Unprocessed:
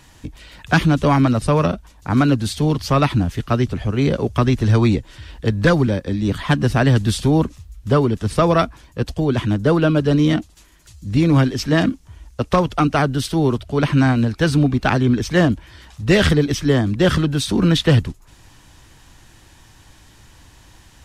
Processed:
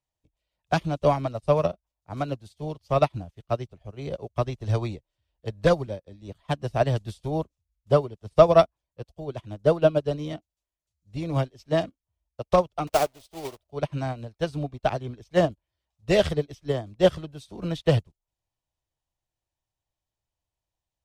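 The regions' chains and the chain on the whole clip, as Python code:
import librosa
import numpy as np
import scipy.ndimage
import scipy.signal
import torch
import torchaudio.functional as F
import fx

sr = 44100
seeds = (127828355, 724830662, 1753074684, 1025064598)

y = fx.chain(x, sr, fx.block_float(bits=3),
    fx.peak_eq(hz=140.0, db=-10.5, octaves=0.86), at=(12.87, 13.71))
y = fx.graphic_eq_15(y, sr, hz=(250, 630, 1600), db=(-8, 9, -7))
y = fx.upward_expand(y, sr, threshold_db=-34.0, expansion=2.5)
y = y * librosa.db_to_amplitude(-1.0)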